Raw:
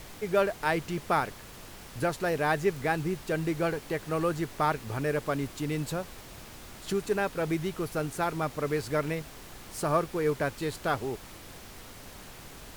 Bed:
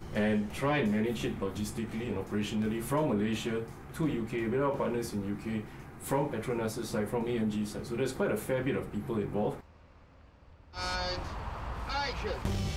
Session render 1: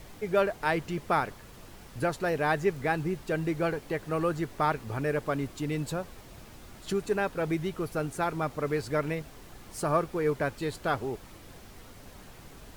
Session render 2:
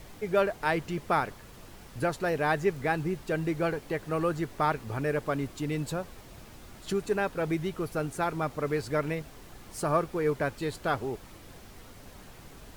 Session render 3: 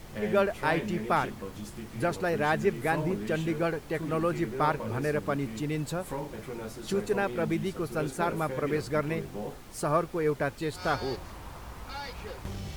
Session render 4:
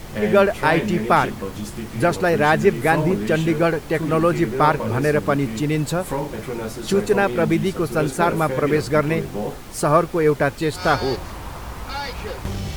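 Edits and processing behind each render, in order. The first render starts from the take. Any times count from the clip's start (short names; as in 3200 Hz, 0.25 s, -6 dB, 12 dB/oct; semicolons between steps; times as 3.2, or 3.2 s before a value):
denoiser 6 dB, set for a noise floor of -47 dBFS
nothing audible
add bed -6 dB
gain +10.5 dB; limiter -3 dBFS, peak gain reduction 2 dB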